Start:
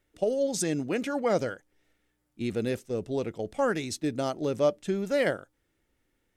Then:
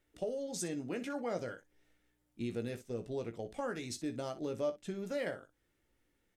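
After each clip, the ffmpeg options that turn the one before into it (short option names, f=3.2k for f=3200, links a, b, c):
-filter_complex "[0:a]acompressor=threshold=-38dB:ratio=2,asplit=2[a][b];[b]aecho=0:1:17|61:0.422|0.188[c];[a][c]amix=inputs=2:normalize=0,volume=-3.5dB"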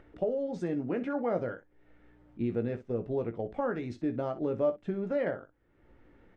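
-af "lowpass=1.5k,acompressor=mode=upward:threshold=-53dB:ratio=2.5,volume=7dB"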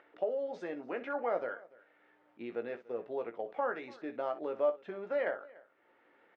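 -af "highpass=620,lowpass=3.8k,aecho=1:1:291:0.075,volume=2dB"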